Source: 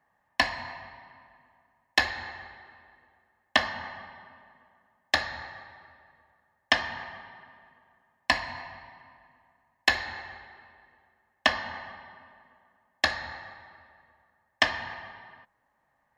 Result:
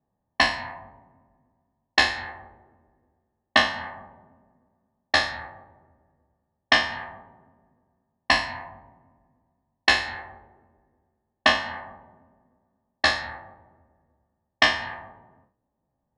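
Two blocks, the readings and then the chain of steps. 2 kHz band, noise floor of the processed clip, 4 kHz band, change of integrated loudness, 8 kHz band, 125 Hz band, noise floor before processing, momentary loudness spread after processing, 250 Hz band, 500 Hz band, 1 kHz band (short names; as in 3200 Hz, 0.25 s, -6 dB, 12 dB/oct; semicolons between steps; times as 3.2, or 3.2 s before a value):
+4.5 dB, -80 dBFS, +5.5 dB, +6.0 dB, +5.0 dB, +4.0 dB, -74 dBFS, 18 LU, +5.5 dB, +5.0 dB, +5.5 dB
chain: spectral trails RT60 0.42 s; brick-wall FIR low-pass 11000 Hz; low-pass opened by the level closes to 370 Hz, open at -21.5 dBFS; gain +2.5 dB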